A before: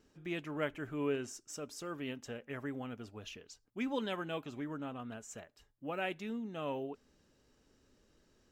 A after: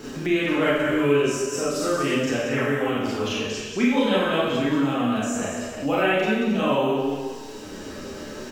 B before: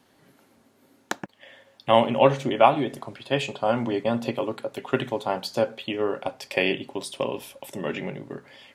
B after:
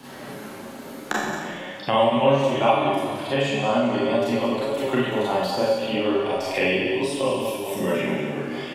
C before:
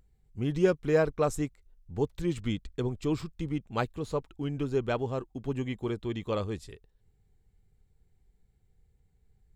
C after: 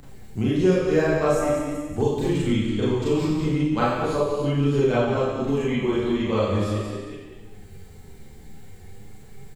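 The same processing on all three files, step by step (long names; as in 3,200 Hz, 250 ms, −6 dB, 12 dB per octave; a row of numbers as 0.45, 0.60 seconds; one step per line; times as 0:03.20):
delay that plays each chunk backwards 192 ms, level −12 dB
on a send: single-tap delay 184 ms −10.5 dB
on the sum: four-comb reverb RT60 0.82 s, combs from 29 ms, DRR −9 dB
flanger 0.42 Hz, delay 6.9 ms, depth 7 ms, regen +53%
multiband upward and downward compressor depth 70%
loudness normalisation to −23 LKFS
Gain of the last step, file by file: +11.5, −2.5, +3.0 decibels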